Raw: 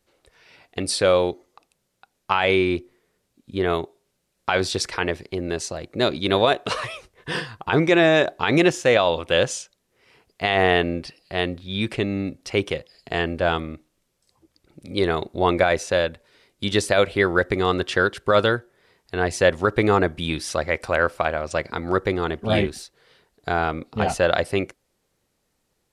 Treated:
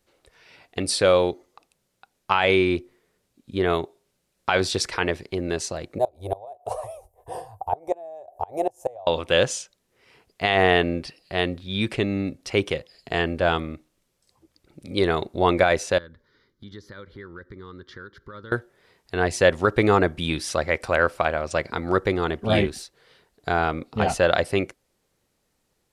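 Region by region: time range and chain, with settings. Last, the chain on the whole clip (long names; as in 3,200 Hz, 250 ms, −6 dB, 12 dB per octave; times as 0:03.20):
0:05.98–0:09.07: drawn EQ curve 100 Hz 0 dB, 160 Hz −22 dB, 280 Hz −18 dB, 760 Hz +9 dB, 1,400 Hz −25 dB, 4,100 Hz −25 dB, 12,000 Hz +5 dB + gate with flip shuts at −11 dBFS, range −24 dB
0:15.98–0:18.52: high-shelf EQ 2,500 Hz −10.5 dB + phaser with its sweep stopped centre 2,600 Hz, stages 6 + downward compressor 2.5 to 1, threshold −46 dBFS
whole clip: no processing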